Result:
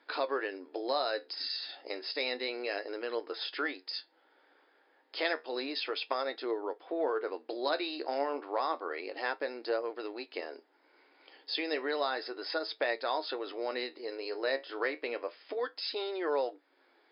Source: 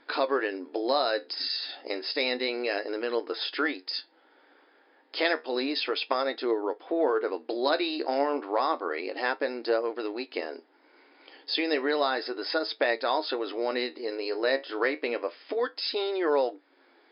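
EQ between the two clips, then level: HPF 310 Hz; -5.5 dB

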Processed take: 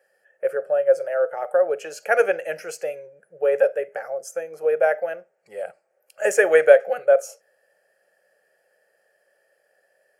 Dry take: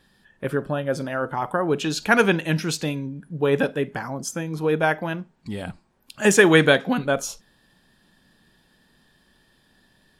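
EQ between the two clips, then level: resonant high-pass 540 Hz, resonance Q 4.9; fixed phaser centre 1000 Hz, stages 6; -4.0 dB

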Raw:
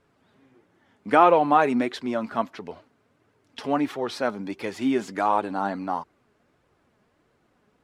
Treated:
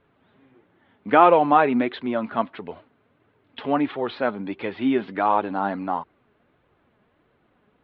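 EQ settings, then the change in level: steep low-pass 3800 Hz 48 dB/oct; +2.0 dB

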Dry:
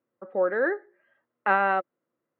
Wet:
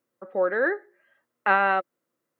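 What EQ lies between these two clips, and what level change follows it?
high shelf 2500 Hz +9.5 dB; 0.0 dB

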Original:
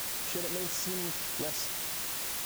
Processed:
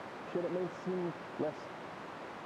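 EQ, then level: HPF 160 Hz 12 dB/oct; LPF 1100 Hz 12 dB/oct; +3.0 dB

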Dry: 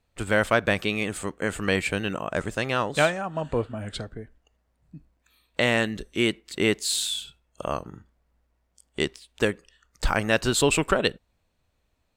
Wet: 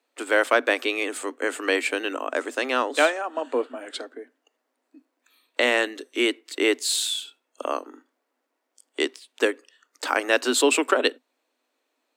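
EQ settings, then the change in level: Chebyshev high-pass 250 Hz, order 8; +2.5 dB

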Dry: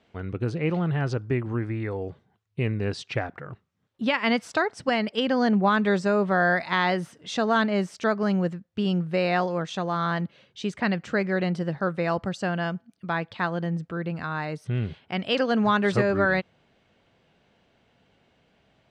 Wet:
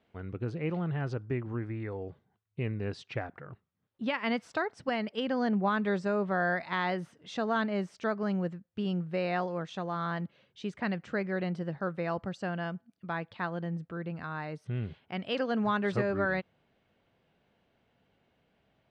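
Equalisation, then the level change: high shelf 5100 Hz -9.5 dB; -7.0 dB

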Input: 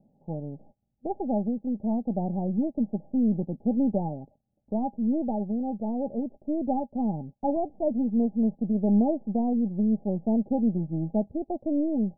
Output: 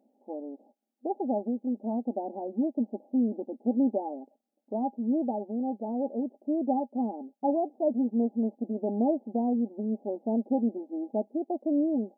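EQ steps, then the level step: brick-wall FIR high-pass 220 Hz; 0.0 dB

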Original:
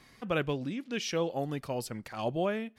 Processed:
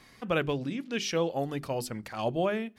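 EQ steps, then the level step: notches 50/100/150/200/250/300/350/400 Hz; +2.5 dB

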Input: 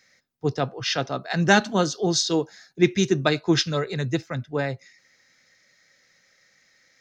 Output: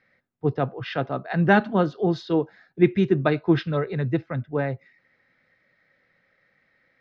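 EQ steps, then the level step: air absorption 460 m; high shelf 6000 Hz -8 dB; +2.0 dB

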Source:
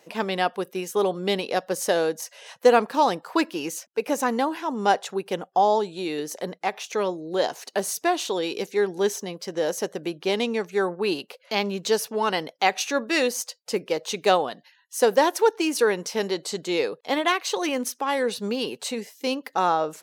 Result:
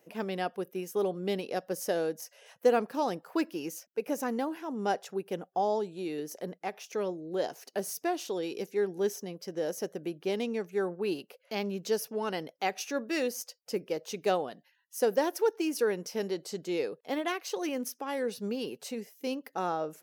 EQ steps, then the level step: dynamic EQ 5100 Hz, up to +6 dB, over -48 dBFS, Q 2.4; graphic EQ 125/250/500/1000/2000/4000/8000 Hz -3/-3/-3/-10/-5/-12/-9 dB; -1.5 dB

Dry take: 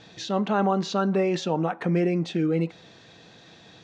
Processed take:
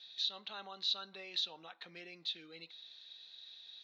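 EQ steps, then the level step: band-pass 3900 Hz, Q 8.1; air absorption 50 m; +7.0 dB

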